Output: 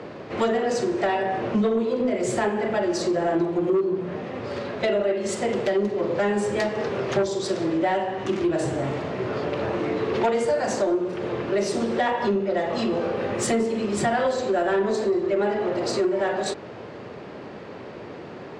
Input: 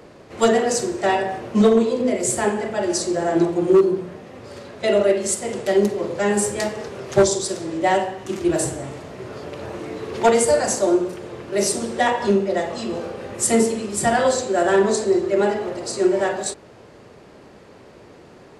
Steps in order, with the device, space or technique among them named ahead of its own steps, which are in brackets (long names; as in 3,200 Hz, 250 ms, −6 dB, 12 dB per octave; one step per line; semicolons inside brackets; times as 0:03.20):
AM radio (band-pass filter 100–3,700 Hz; downward compressor 4 to 1, threshold −28 dBFS, peak gain reduction 15 dB; soft clipping −21 dBFS, distortion −21 dB)
level +7.5 dB